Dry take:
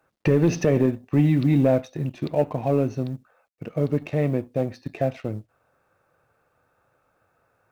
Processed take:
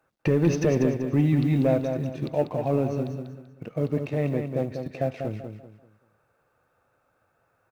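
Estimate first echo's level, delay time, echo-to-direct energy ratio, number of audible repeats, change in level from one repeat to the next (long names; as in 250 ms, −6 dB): −6.5 dB, 193 ms, −6.0 dB, 3, −10.0 dB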